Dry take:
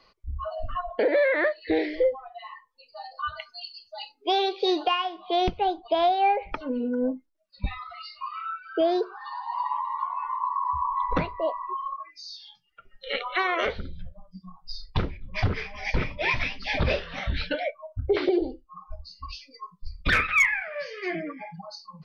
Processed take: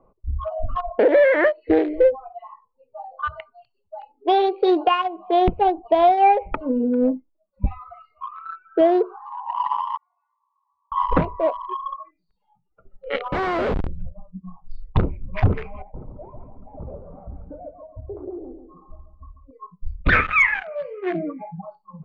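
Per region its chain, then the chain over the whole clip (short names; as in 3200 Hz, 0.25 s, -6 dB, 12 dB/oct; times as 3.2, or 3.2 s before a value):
9.97–10.92 double band-pass 1000 Hz, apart 1.5 oct + differentiator
13.32–13.87 transient shaper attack -7 dB, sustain +1 dB + Schmitt trigger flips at -33 dBFS
15.82–19.51 compressor 2.5:1, threshold -47 dBFS + LPF 1200 Hz 24 dB/oct + feedback echo 0.139 s, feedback 40%, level -8 dB
whole clip: Wiener smoothing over 25 samples; low-pass opened by the level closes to 1100 Hz, open at -25 dBFS; LPF 2100 Hz 12 dB/oct; gain +7.5 dB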